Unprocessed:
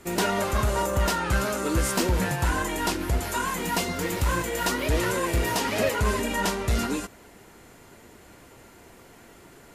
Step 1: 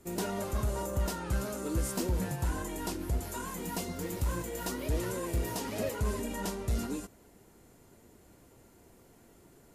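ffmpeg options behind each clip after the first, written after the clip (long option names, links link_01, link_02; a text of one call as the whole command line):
ffmpeg -i in.wav -af "equalizer=frequency=2000:width_type=o:width=2.9:gain=-9.5,volume=-6dB" out.wav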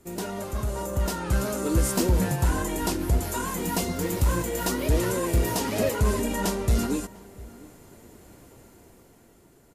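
ffmpeg -i in.wav -filter_complex "[0:a]dynaudnorm=framelen=250:gausssize=9:maxgain=7.5dB,asplit=2[link_01][link_02];[link_02]adelay=699.7,volume=-21dB,highshelf=frequency=4000:gain=-15.7[link_03];[link_01][link_03]amix=inputs=2:normalize=0,volume=1.5dB" out.wav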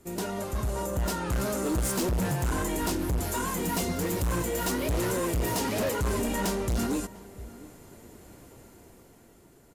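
ffmpeg -i in.wav -af "volume=24.5dB,asoftclip=hard,volume=-24.5dB" out.wav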